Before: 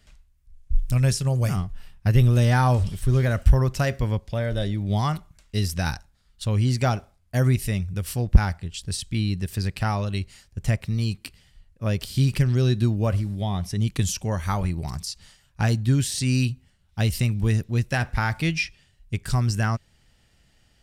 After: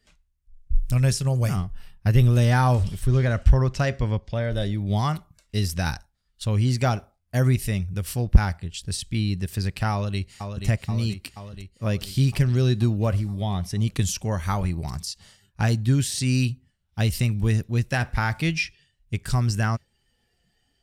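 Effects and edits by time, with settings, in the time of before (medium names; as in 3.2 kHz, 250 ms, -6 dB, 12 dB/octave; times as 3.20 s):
3.07–4.52 s: low-pass 6.8 kHz
9.92–10.65 s: echo throw 480 ms, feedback 70%, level -6.5 dB
whole clip: spectral noise reduction 11 dB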